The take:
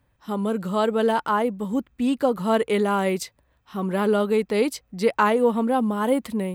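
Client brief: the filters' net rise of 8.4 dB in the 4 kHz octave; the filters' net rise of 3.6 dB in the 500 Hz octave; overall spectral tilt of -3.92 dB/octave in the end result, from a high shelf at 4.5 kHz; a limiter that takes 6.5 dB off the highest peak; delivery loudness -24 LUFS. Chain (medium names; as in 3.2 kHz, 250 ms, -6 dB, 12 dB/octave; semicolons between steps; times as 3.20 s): peaking EQ 500 Hz +4 dB; peaking EQ 4 kHz +8 dB; treble shelf 4.5 kHz +6.5 dB; trim -1.5 dB; peak limiter -13 dBFS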